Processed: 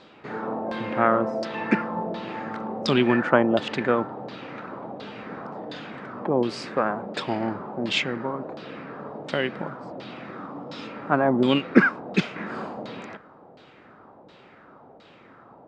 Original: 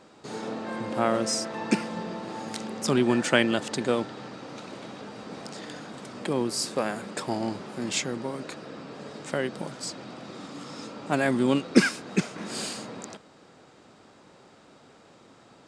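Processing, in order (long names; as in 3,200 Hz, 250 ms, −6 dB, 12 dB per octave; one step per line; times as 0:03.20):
auto-filter low-pass saw down 1.4 Hz 620–4,000 Hz
level +2 dB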